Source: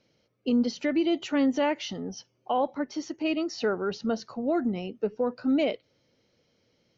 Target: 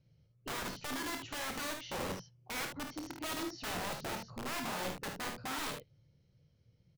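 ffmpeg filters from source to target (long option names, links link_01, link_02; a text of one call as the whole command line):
ffmpeg -i in.wav -filter_complex "[0:a]firequalizer=gain_entry='entry(160,0);entry(220,-19);entry(660,-22)':delay=0.05:min_phase=1,aeval=exprs='(mod(150*val(0)+1,2)-1)/150':channel_layout=same,asplit=2[link_01][link_02];[link_02]aecho=0:1:27|53|75:0.355|0.422|0.422[link_03];[link_01][link_03]amix=inputs=2:normalize=0,volume=8.5dB" out.wav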